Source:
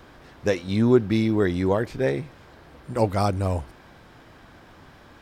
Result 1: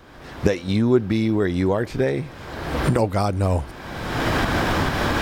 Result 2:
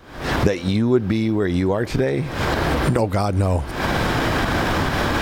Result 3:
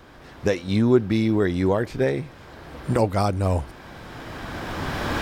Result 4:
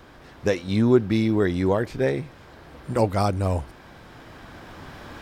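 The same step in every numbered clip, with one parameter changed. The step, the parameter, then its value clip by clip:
recorder AGC, rising by: 34, 89, 13, 5 dB/s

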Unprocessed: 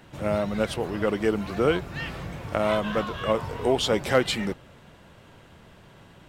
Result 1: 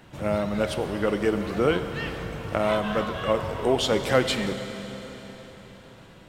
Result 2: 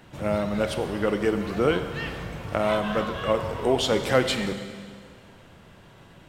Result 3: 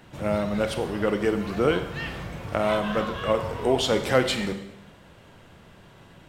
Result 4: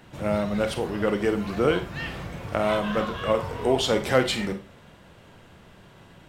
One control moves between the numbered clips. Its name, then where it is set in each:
Schroeder reverb, RT60: 4.3, 1.9, 0.84, 0.31 s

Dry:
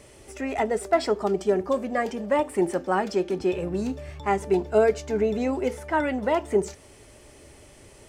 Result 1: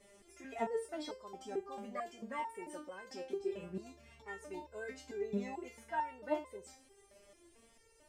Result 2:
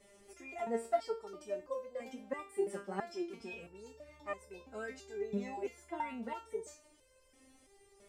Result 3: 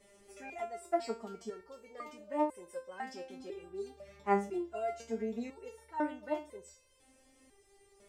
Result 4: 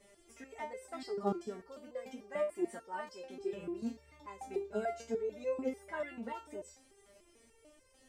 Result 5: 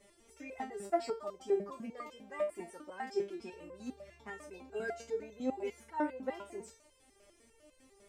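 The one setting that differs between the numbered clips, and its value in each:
stepped resonator, rate: 4.5, 3, 2, 6.8, 10 Hz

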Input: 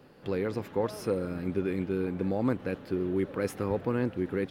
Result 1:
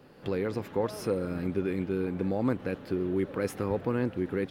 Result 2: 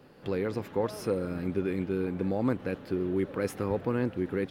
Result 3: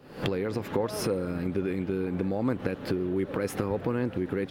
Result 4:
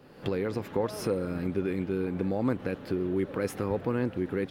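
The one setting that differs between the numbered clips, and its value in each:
recorder AGC, rising by: 12, 5.1, 88, 32 dB/s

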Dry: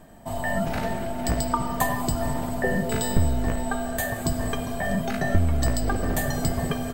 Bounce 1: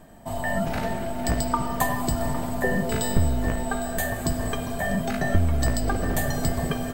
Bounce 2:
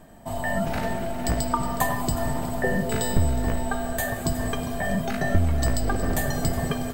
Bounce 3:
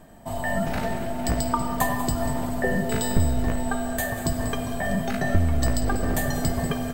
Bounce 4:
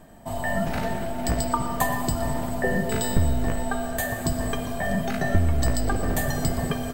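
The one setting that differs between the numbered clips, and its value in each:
lo-fi delay, time: 0.807, 0.366, 0.19, 0.12 s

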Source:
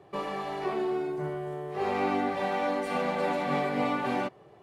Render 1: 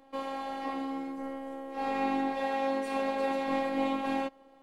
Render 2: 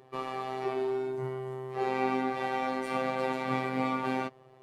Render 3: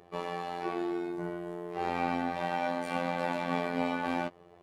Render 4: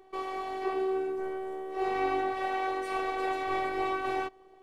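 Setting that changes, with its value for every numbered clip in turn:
robotiser, frequency: 270, 130, 87, 380 Hz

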